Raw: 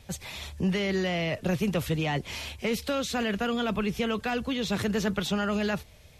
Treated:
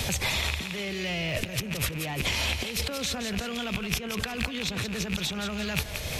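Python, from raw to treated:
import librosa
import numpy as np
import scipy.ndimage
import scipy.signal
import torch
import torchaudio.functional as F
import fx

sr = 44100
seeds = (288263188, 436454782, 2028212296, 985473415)

y = fx.rattle_buzz(x, sr, strikes_db=-39.0, level_db=-25.0)
y = fx.over_compress(y, sr, threshold_db=-39.0, ratio=-1.0)
y = fx.echo_thinned(y, sr, ms=170, feedback_pct=33, hz=420.0, wet_db=-9.0)
y = fx.band_squash(y, sr, depth_pct=100)
y = y * 10.0 ** (5.5 / 20.0)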